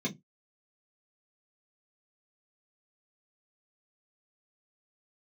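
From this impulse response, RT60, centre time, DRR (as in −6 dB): 0.15 s, 10 ms, −4.5 dB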